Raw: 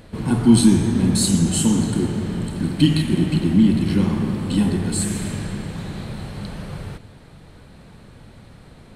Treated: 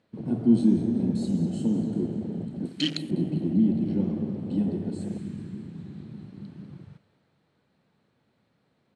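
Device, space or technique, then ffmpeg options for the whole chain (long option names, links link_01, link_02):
over-cleaned archive recording: -filter_complex "[0:a]asettb=1/sr,asplit=3[link_01][link_02][link_03];[link_01]atrim=end=2.654[link_04];[link_02]atrim=start=2.65:end=3.11,asetpts=PTS-STARTPTS,afade=type=in:duration=0.004:curve=qsin,afade=type=out:start_time=0.456:duration=0.004:curve=qsin,aemphasis=mode=production:type=riaa[link_05];[link_03]atrim=start=3.106[link_06];[link_04][link_05]acrossfade=duration=0.004:curve1=hsin:curve2=qsin[link_07];[link_07][link_06]acrossfade=duration=0.004:curve1=qsin:curve2=hsin,highpass=160,lowpass=6200,aecho=1:1:197|394|591|788|985:0.224|0.114|0.0582|0.0297|0.0151,afwtdn=0.0631,volume=-6dB"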